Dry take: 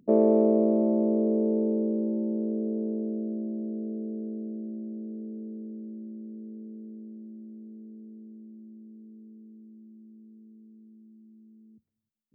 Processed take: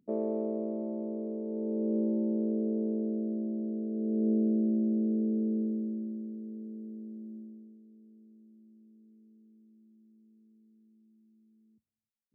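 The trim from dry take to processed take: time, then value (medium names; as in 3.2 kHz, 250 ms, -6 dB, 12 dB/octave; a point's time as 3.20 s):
1.45 s -11.5 dB
1.97 s -1 dB
3.90 s -1 dB
4.30 s +8.5 dB
5.60 s +8.5 dB
6.39 s 0 dB
7.37 s 0 dB
7.82 s -11 dB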